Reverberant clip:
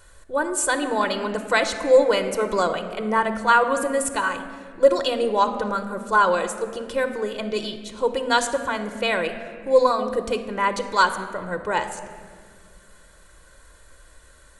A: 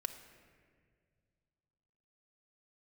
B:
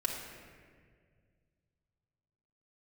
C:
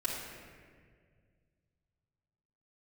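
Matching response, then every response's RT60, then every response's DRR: A; 1.9 s, 1.9 s, 1.9 s; 7.0 dB, -2.0 dB, -7.5 dB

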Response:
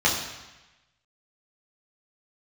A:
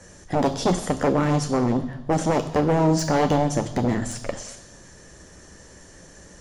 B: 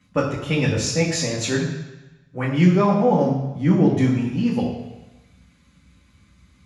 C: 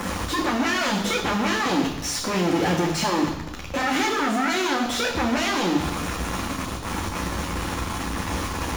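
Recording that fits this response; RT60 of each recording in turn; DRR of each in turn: B; 1.1 s, 1.1 s, 1.1 s; 8.0 dB, -5.0 dB, -0.5 dB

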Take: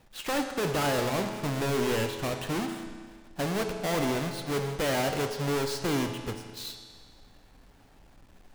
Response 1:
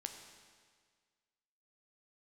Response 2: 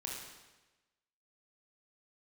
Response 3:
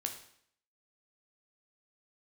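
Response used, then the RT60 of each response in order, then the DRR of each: 1; 1.7 s, 1.1 s, 0.65 s; 4.5 dB, -2.5 dB, 3.5 dB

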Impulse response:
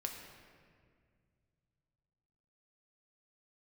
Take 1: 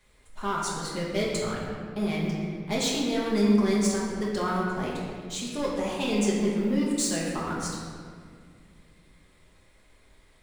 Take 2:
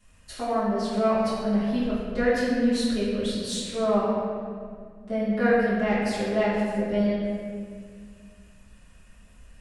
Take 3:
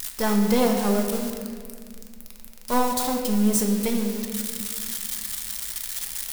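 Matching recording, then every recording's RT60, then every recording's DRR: 3; 2.0 s, 2.0 s, 2.0 s; -5.5 dB, -12.0 dB, 1.5 dB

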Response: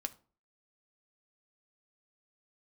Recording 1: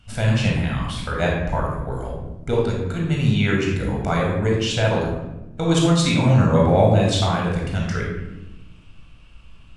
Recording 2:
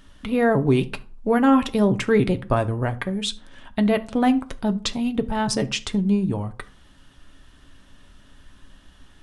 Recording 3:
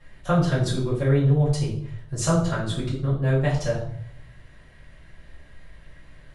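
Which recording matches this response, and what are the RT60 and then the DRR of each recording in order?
2; 1.1 s, 0.40 s, 0.65 s; -2.5 dB, 8.0 dB, -9.5 dB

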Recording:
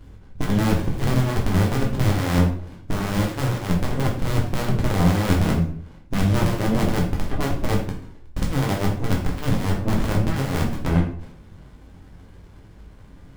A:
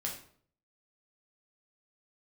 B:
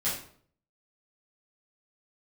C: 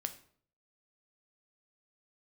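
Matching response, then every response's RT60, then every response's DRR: A; 0.55 s, 0.55 s, 0.55 s; -2.0 dB, -11.5 dB, 7.5 dB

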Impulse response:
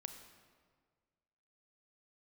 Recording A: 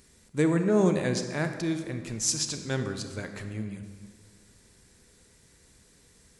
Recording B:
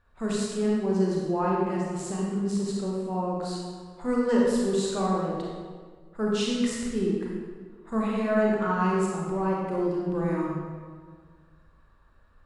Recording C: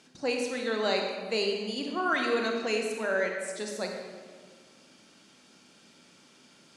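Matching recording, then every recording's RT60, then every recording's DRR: A; 1.7 s, 1.7 s, 1.7 s; 6.5 dB, -4.0 dB, 1.5 dB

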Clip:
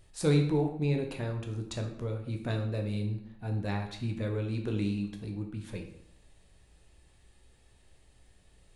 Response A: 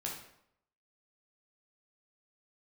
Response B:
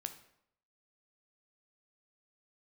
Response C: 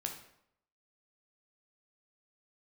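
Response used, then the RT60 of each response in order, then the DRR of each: C; 0.75 s, 0.75 s, 0.75 s; -2.5 dB, 7.5 dB, 2.5 dB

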